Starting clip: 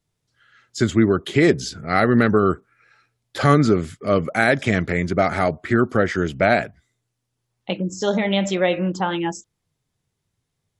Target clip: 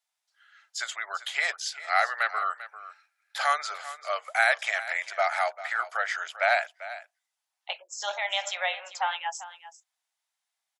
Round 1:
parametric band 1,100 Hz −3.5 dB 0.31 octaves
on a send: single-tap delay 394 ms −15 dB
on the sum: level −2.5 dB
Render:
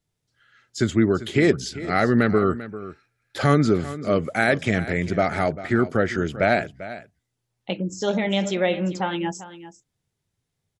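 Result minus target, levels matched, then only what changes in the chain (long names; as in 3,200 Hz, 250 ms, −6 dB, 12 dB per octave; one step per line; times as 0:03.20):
500 Hz band +6.0 dB
add first: Butterworth high-pass 690 Hz 48 dB per octave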